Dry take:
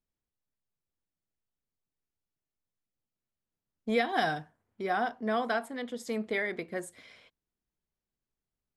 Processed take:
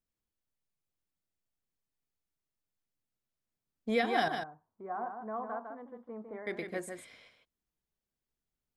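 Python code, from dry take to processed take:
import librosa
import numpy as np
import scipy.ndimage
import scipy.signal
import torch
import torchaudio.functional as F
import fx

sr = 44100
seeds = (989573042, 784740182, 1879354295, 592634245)

y = fx.ladder_lowpass(x, sr, hz=1200.0, resonance_pct=55, at=(4.28, 6.47))
y = y + 10.0 ** (-6.5 / 20.0) * np.pad(y, (int(153 * sr / 1000.0), 0))[:len(y)]
y = y * librosa.db_to_amplitude(-2.0)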